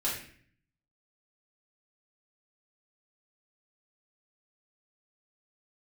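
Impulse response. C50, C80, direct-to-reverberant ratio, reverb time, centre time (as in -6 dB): 3.5 dB, 7.5 dB, -7.5 dB, 0.50 s, 42 ms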